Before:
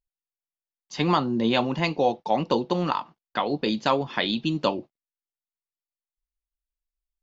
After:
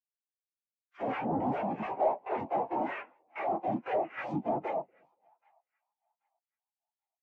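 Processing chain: median filter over 15 samples; high-pass 140 Hz; high-order bell 2.2 kHz +9 dB 1.2 oct; noise-vocoded speech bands 4; flange 1.3 Hz, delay 6.8 ms, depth 9.6 ms, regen -29%; overdrive pedal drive 32 dB, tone 3 kHz, clips at -12 dBFS; on a send: two-band feedback delay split 680 Hz, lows 236 ms, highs 782 ms, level -13 dB; on the sum: spectral contrast expander 2.5:1; trim -7 dB

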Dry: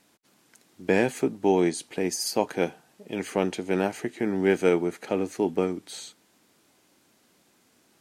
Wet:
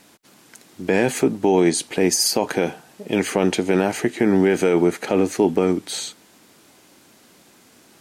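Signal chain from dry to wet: loudness maximiser +18 dB; trim -6.5 dB

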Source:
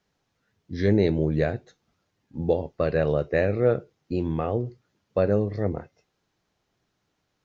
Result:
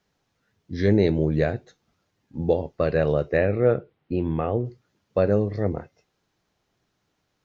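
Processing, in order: 3.37–4.65 s: low-pass 3.4 kHz 24 dB/octave; trim +1.5 dB

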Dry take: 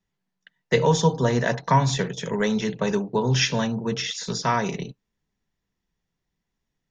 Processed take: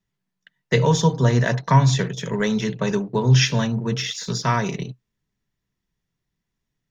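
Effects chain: graphic EQ with 31 bands 125 Hz +7 dB, 500 Hz -3 dB, 800 Hz -5 dB; in parallel at -12 dB: crossover distortion -38 dBFS

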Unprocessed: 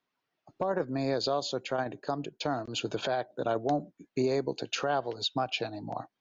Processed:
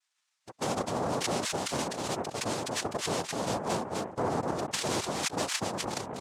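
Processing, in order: expander on every frequency bin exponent 2; delay 253 ms -10.5 dB; noise-vocoded speech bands 2; level flattener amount 70%; trim -2.5 dB

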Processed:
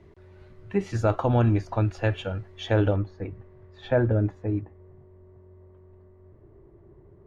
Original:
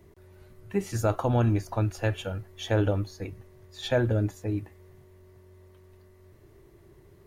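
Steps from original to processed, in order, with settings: low-pass 4 kHz 12 dB/octave, from 2.96 s 1.7 kHz, from 4.61 s 1 kHz; trim +2.5 dB

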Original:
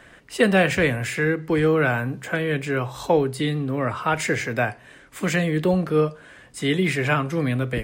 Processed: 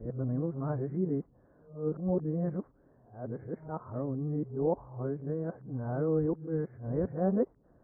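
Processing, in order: reverse the whole clip; Gaussian low-pass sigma 10 samples; attacks held to a fixed rise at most 140 dB/s; trim -8 dB

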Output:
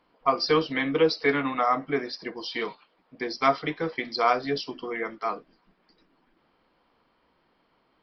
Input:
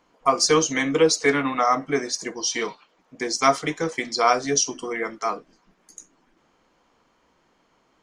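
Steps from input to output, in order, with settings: resampled via 11.025 kHz; trim -3.5 dB

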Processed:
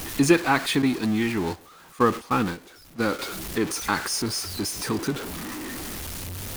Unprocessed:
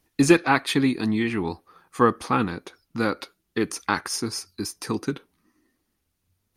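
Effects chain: jump at every zero crossing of -25.5 dBFS; 0.82–3.19 s: gate -24 dBFS, range -16 dB; trim -2.5 dB

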